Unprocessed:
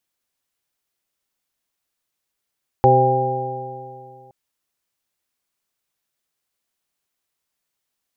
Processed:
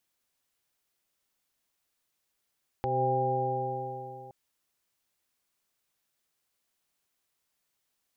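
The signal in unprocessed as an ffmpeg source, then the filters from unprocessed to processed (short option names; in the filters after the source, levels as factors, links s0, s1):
-f lavfi -i "aevalsrc='0.158*pow(10,-3*t/2.43)*sin(2*PI*127.19*t)+0.0531*pow(10,-3*t/2.43)*sin(2*PI*255.52*t)+0.158*pow(10,-3*t/2.43)*sin(2*PI*386.11*t)+0.178*pow(10,-3*t/2.43)*sin(2*PI*520.05*t)+0.0376*pow(10,-3*t/2.43)*sin(2*PI*658.38*t)+0.282*pow(10,-3*t/2.43)*sin(2*PI*802.09*t)':d=1.47:s=44100"
-af "acompressor=threshold=0.0398:ratio=2,alimiter=limit=0.119:level=0:latency=1:release=274"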